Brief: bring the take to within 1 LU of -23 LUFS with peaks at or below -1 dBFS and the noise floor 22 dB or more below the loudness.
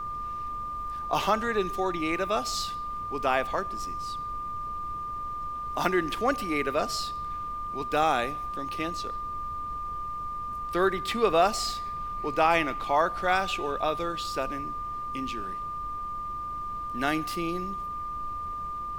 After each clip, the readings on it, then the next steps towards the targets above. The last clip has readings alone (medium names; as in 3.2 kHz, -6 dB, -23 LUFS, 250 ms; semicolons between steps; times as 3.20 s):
steady tone 1.2 kHz; tone level -32 dBFS; noise floor -35 dBFS; noise floor target -52 dBFS; loudness -29.5 LUFS; peak level -7.5 dBFS; loudness target -23.0 LUFS
-> band-stop 1.2 kHz, Q 30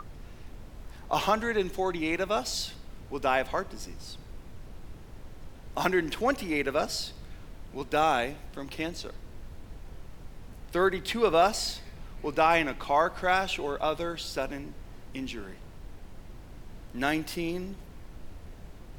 steady tone not found; noise floor -47 dBFS; noise floor target -51 dBFS
-> noise print and reduce 6 dB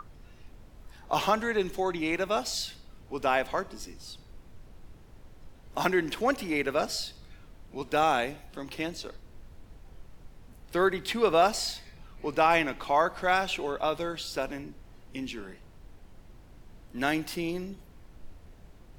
noise floor -53 dBFS; loudness -29.0 LUFS; peak level -8.0 dBFS; loudness target -23.0 LUFS
-> trim +6 dB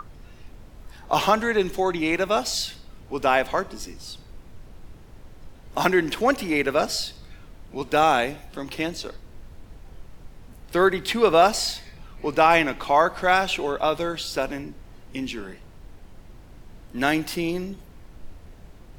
loudness -23.0 LUFS; peak level -2.0 dBFS; noise floor -47 dBFS